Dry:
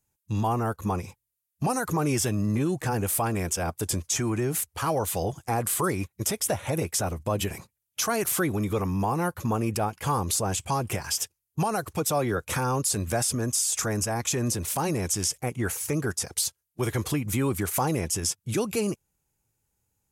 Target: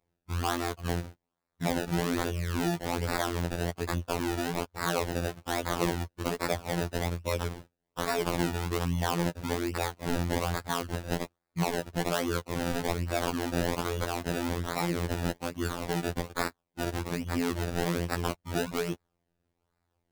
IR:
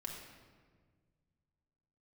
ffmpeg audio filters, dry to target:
-af "acrusher=samples=28:mix=1:aa=0.000001:lfo=1:lforange=28:lforate=1.2,afftfilt=real='hypot(re,im)*cos(PI*b)':imag='0':win_size=2048:overlap=0.75"

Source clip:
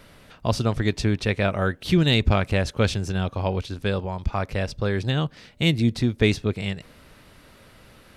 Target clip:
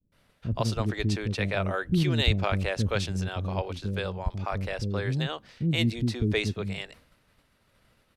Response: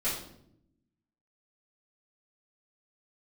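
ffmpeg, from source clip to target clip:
-filter_complex "[0:a]acrossover=split=350[a][b];[b]adelay=120[c];[a][c]amix=inputs=2:normalize=0,agate=range=-33dB:threshold=-42dB:ratio=3:detection=peak,volume=-4dB"

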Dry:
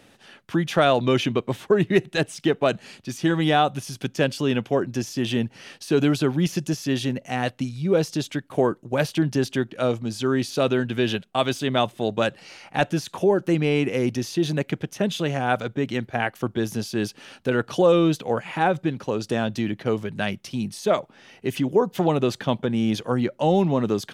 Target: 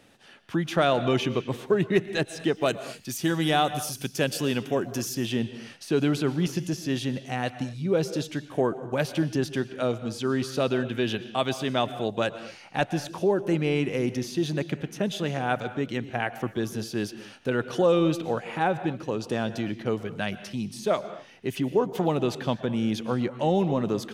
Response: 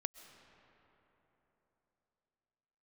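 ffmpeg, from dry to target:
-filter_complex "[0:a]asettb=1/sr,asplit=3[a][b][c];[a]atrim=end=2.554[d];[b]atrim=start=2.55:end=5.15,asetpts=PTS-STARTPTS,afade=t=in:d=0.004:c=qsin,afade=t=out:st=2.596:d=0.004:c=qsin,aemphasis=mode=production:type=50fm[e];[c]atrim=start=5.146[f];[d][e]acrossfade=d=0.004:c1=hsin:c2=qsin[g];[g][f]acrossfade=d=0.004:c1=qsin:c2=hsin[h];[1:a]atrim=start_sample=2205,afade=t=out:st=0.34:d=0.01,atrim=end_sample=15435,asetrate=48510,aresample=44100[i];[h][i]afir=irnorm=-1:irlink=0,volume=-1dB"

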